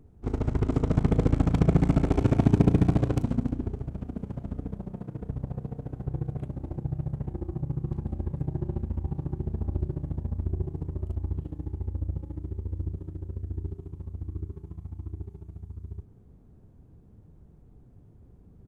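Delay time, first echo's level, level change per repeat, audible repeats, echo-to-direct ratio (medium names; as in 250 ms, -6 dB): 307 ms, -21.0 dB, -11.5 dB, 2, -20.5 dB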